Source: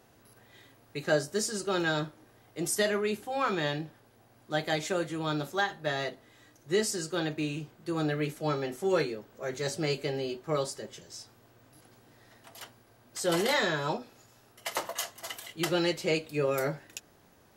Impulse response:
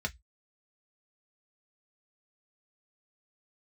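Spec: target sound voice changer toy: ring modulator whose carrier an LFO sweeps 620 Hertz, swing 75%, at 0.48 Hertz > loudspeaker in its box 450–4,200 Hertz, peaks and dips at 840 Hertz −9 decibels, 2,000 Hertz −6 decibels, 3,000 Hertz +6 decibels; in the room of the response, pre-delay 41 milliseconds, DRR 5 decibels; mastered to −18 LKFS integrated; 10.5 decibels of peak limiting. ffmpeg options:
-filter_complex "[0:a]alimiter=limit=-24dB:level=0:latency=1,asplit=2[link_01][link_02];[1:a]atrim=start_sample=2205,adelay=41[link_03];[link_02][link_03]afir=irnorm=-1:irlink=0,volume=-9dB[link_04];[link_01][link_04]amix=inputs=2:normalize=0,aeval=exprs='val(0)*sin(2*PI*620*n/s+620*0.75/0.48*sin(2*PI*0.48*n/s))':channel_layout=same,highpass=450,equalizer=frequency=840:width_type=q:width=4:gain=-9,equalizer=frequency=2000:width_type=q:width=4:gain=-6,equalizer=frequency=3000:width_type=q:width=4:gain=6,lowpass=frequency=4200:width=0.5412,lowpass=frequency=4200:width=1.3066,volume=21.5dB"

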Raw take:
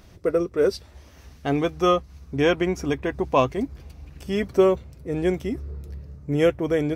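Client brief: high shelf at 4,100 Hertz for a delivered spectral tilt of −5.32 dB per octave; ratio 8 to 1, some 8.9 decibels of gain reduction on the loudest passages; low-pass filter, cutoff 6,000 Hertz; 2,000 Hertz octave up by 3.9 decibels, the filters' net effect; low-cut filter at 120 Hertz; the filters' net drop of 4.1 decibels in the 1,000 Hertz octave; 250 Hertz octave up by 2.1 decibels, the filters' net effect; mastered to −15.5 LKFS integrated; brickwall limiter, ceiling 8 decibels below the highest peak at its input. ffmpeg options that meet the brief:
ffmpeg -i in.wav -af "highpass=120,lowpass=6000,equalizer=frequency=250:width_type=o:gain=4,equalizer=frequency=1000:width_type=o:gain=-8,equalizer=frequency=2000:width_type=o:gain=5.5,highshelf=frequency=4100:gain=8,acompressor=threshold=-20dB:ratio=8,volume=14.5dB,alimiter=limit=-4dB:level=0:latency=1" out.wav

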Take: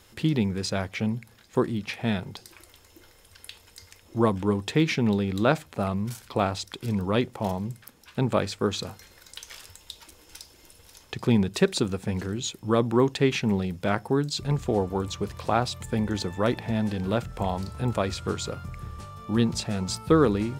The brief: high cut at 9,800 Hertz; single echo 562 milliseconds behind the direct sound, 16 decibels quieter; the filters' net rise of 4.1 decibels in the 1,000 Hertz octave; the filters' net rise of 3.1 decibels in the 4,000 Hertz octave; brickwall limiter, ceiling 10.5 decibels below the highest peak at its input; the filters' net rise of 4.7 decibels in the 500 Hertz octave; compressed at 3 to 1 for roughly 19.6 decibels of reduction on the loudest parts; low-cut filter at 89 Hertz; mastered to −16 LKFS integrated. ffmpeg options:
ffmpeg -i in.wav -af "highpass=89,lowpass=9800,equalizer=frequency=500:width_type=o:gain=5,equalizer=frequency=1000:width_type=o:gain=3.5,equalizer=frequency=4000:width_type=o:gain=3.5,acompressor=threshold=-40dB:ratio=3,alimiter=level_in=5.5dB:limit=-24dB:level=0:latency=1,volume=-5.5dB,aecho=1:1:562:0.158,volume=26dB" out.wav

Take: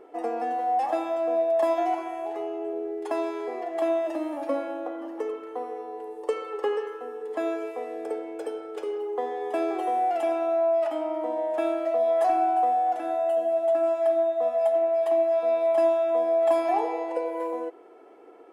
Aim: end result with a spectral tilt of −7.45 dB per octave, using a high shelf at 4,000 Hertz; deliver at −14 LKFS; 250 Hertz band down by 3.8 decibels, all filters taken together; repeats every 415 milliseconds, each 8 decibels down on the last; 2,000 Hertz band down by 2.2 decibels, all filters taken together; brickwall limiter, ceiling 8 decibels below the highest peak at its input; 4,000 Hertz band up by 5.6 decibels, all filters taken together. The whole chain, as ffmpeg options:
ffmpeg -i in.wav -af "equalizer=frequency=250:width_type=o:gain=-6,equalizer=frequency=2000:width_type=o:gain=-6,highshelf=frequency=4000:gain=5.5,equalizer=frequency=4000:width_type=o:gain=6.5,alimiter=limit=-21.5dB:level=0:latency=1,aecho=1:1:415|830|1245|1660|2075:0.398|0.159|0.0637|0.0255|0.0102,volume=15.5dB" out.wav

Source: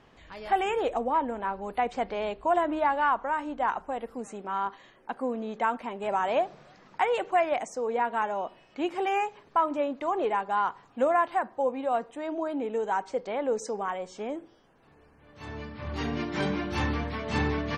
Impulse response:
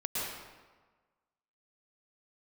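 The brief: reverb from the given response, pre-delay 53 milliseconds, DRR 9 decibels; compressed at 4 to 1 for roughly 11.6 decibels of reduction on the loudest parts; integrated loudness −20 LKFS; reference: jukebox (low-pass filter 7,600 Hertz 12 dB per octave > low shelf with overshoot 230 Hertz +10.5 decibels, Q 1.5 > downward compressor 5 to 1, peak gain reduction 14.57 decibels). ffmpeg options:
-filter_complex "[0:a]acompressor=threshold=-34dB:ratio=4,asplit=2[link_01][link_02];[1:a]atrim=start_sample=2205,adelay=53[link_03];[link_02][link_03]afir=irnorm=-1:irlink=0,volume=-14.5dB[link_04];[link_01][link_04]amix=inputs=2:normalize=0,lowpass=7600,lowshelf=frequency=230:width_type=q:width=1.5:gain=10.5,acompressor=threshold=-39dB:ratio=5,volume=23dB"

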